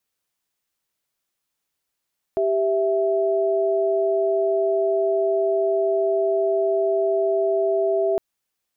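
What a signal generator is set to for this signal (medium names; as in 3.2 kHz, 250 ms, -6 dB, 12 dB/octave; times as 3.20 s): chord G4/E5 sine, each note -20.5 dBFS 5.81 s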